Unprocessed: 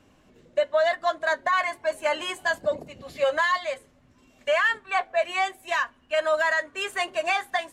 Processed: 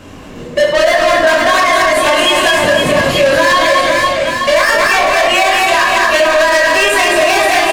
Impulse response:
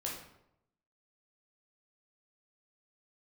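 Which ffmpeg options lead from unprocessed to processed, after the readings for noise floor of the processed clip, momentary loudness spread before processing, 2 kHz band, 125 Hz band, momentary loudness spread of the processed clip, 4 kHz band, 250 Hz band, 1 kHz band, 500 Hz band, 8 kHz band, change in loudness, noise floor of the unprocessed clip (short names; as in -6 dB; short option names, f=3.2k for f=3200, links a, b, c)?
-29 dBFS, 7 LU, +15.5 dB, +27.0 dB, 2 LU, +20.0 dB, +24.5 dB, +15.5 dB, +15.0 dB, +23.0 dB, +15.5 dB, -60 dBFS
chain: -filter_complex "[0:a]asoftclip=type=tanh:threshold=-30dB,aecho=1:1:220|506|877.8|1361|1989:0.631|0.398|0.251|0.158|0.1[a];[1:a]atrim=start_sample=2205,atrim=end_sample=6174[b];[a][b]afir=irnorm=-1:irlink=0,alimiter=level_in=26dB:limit=-1dB:release=50:level=0:latency=1,volume=-1dB"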